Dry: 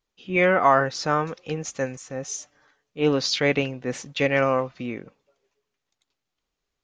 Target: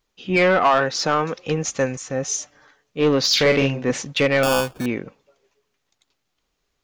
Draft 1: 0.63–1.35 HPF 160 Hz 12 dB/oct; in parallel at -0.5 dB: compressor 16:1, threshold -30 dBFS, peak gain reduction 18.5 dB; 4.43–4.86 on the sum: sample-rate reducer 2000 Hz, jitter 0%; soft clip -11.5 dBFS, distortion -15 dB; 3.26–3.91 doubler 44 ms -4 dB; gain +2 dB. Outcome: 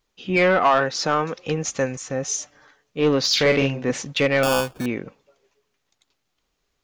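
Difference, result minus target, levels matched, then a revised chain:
compressor: peak gain reduction +7 dB
0.63–1.35 HPF 160 Hz 12 dB/oct; in parallel at -0.5 dB: compressor 16:1, threshold -22.5 dBFS, peak gain reduction 11.5 dB; 4.43–4.86 on the sum: sample-rate reducer 2000 Hz, jitter 0%; soft clip -11.5 dBFS, distortion -14 dB; 3.26–3.91 doubler 44 ms -4 dB; gain +2 dB

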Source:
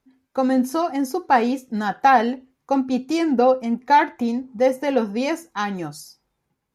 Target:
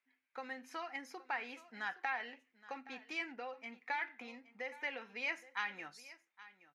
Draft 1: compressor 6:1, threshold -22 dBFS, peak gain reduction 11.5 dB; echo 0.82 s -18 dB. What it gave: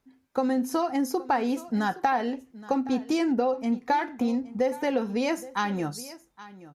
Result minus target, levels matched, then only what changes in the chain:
2000 Hz band -11.0 dB
add after compressor: band-pass 2200 Hz, Q 3

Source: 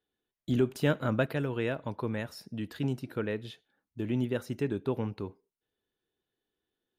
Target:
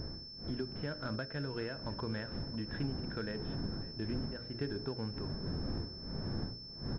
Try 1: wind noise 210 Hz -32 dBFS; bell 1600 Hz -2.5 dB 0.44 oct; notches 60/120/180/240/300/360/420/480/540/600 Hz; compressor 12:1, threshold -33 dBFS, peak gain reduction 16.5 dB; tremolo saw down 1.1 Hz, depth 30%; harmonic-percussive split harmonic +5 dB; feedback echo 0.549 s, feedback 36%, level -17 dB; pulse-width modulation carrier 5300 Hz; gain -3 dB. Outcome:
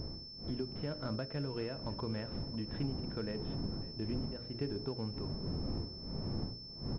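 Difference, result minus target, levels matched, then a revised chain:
2000 Hz band -7.0 dB
wind noise 210 Hz -32 dBFS; bell 1600 Hz +9 dB 0.44 oct; notches 60/120/180/240/300/360/420/480/540/600 Hz; compressor 12:1, threshold -33 dBFS, peak gain reduction 16.5 dB; tremolo saw down 1.1 Hz, depth 30%; harmonic-percussive split harmonic +5 dB; feedback echo 0.549 s, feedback 36%, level -17 dB; pulse-width modulation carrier 5300 Hz; gain -3 dB

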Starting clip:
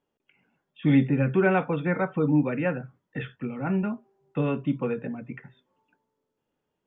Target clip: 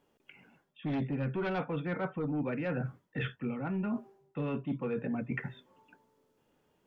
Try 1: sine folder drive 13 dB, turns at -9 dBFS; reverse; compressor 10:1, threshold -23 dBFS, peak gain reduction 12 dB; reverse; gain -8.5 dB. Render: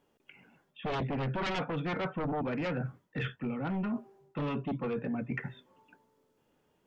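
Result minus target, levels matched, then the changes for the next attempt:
sine folder: distortion +13 dB
change: sine folder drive 13 dB, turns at -2.5 dBFS

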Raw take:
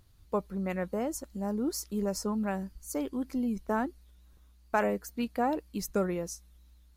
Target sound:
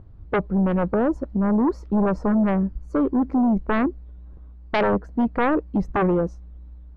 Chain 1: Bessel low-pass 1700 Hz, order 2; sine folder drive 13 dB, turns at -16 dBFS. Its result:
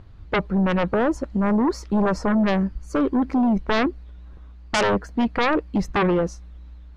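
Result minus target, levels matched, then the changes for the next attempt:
2000 Hz band +4.0 dB
change: Bessel low-pass 620 Hz, order 2

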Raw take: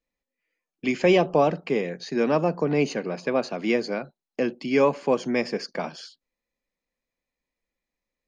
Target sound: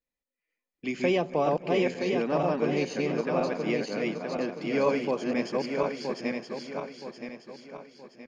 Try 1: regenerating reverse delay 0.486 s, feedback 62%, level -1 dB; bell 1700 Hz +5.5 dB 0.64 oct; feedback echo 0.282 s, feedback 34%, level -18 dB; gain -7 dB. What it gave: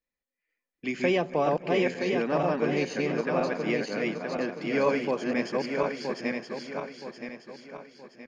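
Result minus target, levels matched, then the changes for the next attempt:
2000 Hz band +2.5 dB
remove: bell 1700 Hz +5.5 dB 0.64 oct

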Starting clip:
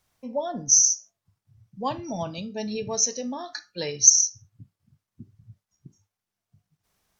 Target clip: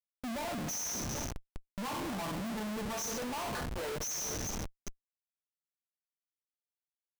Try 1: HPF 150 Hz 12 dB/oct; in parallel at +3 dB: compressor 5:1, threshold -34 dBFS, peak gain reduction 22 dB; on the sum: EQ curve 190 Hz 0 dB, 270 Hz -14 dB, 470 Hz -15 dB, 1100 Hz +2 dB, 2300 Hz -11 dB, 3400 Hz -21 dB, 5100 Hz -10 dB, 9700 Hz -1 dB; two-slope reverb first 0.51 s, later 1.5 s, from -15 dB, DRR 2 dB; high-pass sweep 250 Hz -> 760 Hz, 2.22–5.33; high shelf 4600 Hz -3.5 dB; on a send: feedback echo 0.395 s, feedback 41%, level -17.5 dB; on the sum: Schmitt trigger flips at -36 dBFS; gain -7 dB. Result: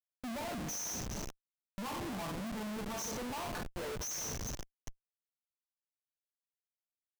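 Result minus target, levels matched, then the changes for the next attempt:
compressor: peak gain reduction +9 dB
change: compressor 5:1, threshold -23 dBFS, peak gain reduction 13 dB

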